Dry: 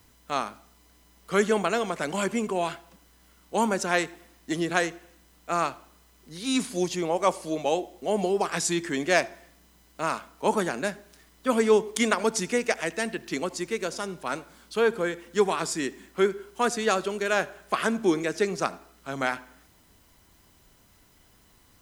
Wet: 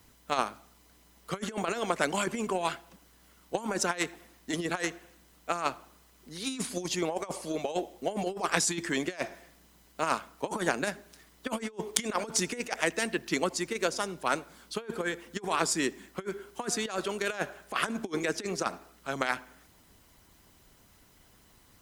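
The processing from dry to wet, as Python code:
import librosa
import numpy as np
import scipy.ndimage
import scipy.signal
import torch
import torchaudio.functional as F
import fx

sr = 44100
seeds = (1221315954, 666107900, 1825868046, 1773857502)

y = fx.over_compress(x, sr, threshold_db=-27.0, ratio=-0.5)
y = fx.cheby_harmonics(y, sr, harmonics=(7,), levels_db=(-26,), full_scale_db=-3.5)
y = fx.hpss(y, sr, part='percussive', gain_db=6)
y = F.gain(torch.from_numpy(y), -3.0).numpy()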